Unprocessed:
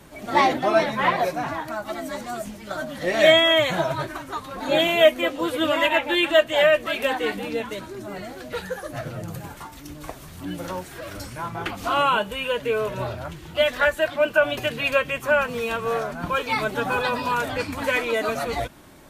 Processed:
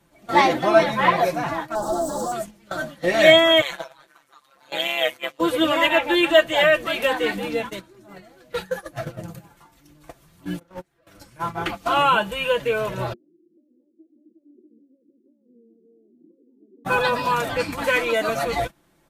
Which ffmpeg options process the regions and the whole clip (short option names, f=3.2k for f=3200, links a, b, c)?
-filter_complex "[0:a]asettb=1/sr,asplit=3[a][b][c];[a]atrim=end=1.754[d];[b]atrim=start=1.75:end=2.32,asetpts=PTS-STARTPTS,afade=t=in:d=0.004:c=qsin,afade=t=out:st=0.566:d=0.004:c=qsin,equalizer=f=7.8k:t=o:w=0.28:g=14,asplit=2[e][f];[f]highpass=f=720:p=1,volume=30dB,asoftclip=type=tanh:threshold=-18dB[g];[e][g]amix=inputs=2:normalize=0,lowpass=f=2k:p=1,volume=-6dB,asuperstop=centerf=2300:order=4:qfactor=0.55[h];[c]atrim=start=2.316[i];[d][h]acrossfade=d=0.004:c1=hsin:c2=qsin[j];[j][i]acrossfade=d=0.004:c1=qsin:c2=hsin,asettb=1/sr,asplit=3[k][l][m];[k]atrim=end=3.614[n];[l]atrim=start=3.61:end=5.39,asetpts=PTS-STARTPTS,afade=t=in:d=0.004:c=qsin,afade=t=out:st=1.776:d=0.004:c=qsin,highpass=f=1.4k:p=1,tremolo=f=140:d=0.824[o];[m]atrim=start=5.386[p];[n][o]acrossfade=d=0.004:c1=hsin:c2=qsin[q];[q][p]acrossfade=d=0.004:c1=qsin:c2=hsin,asettb=1/sr,asplit=3[r][s][t];[r]atrim=end=10.594[u];[s]atrim=start=10.59:end=11.07,asetpts=PTS-STARTPTS,afade=t=in:d=0.004:c=qsin,afade=t=out:st=0.476:d=0.004:c=qsin,highshelf=f=4.2k:g=-8,agate=range=-15dB:threshold=-31dB:ratio=16:release=100:detection=peak,aeval=exprs='clip(val(0),-1,0.0447)':c=same[v];[t]atrim=start=11.066[w];[u][v]acrossfade=d=0.004:c1=hsin:c2=qsin[x];[x][w]acrossfade=d=0.004:c1=qsin:c2=hsin,asettb=1/sr,asplit=3[y][z][aa];[y]atrim=end=13.134[ab];[z]atrim=start=13.13:end=16.85,asetpts=PTS-STARTPTS,afade=t=in:d=0.004:c=qsin,afade=t=out:st=3.716:d=0.004:c=qsin,acompressor=threshold=-23dB:ratio=4:attack=3.2:release=140:knee=1:detection=peak,asuperpass=centerf=300:order=8:qfactor=1.7[ac];[aa]atrim=start=16.846[ad];[ab][ac]acrossfade=d=0.004:c1=hsin:c2=qsin[ae];[ae][ad]acrossfade=d=0.004:c1=qsin:c2=hsin,agate=range=-16dB:threshold=-31dB:ratio=16:detection=peak,aecho=1:1:5.9:0.45,volume=1.5dB"